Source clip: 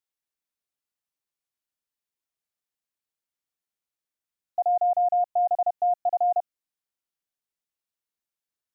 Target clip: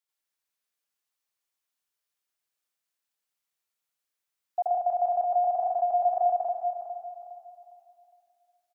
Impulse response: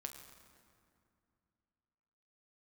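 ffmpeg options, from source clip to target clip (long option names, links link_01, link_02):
-filter_complex "[0:a]lowshelf=frequency=400:gain=-10.5,aecho=1:1:409|818|1227|1636:0.316|0.104|0.0344|0.0114,asplit=2[link_01][link_02];[1:a]atrim=start_sample=2205,adelay=88[link_03];[link_02][link_03]afir=irnorm=-1:irlink=0,volume=6.5dB[link_04];[link_01][link_04]amix=inputs=2:normalize=0"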